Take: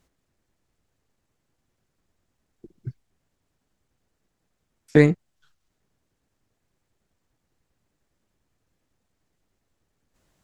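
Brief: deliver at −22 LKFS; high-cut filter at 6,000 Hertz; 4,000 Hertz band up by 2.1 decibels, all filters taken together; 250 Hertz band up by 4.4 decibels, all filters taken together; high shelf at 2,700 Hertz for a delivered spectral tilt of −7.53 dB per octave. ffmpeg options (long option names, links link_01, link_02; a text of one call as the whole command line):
ffmpeg -i in.wav -af "lowpass=6000,equalizer=frequency=250:width_type=o:gain=6,highshelf=frequency=2700:gain=-7,equalizer=frequency=4000:width_type=o:gain=8,volume=-5.5dB" out.wav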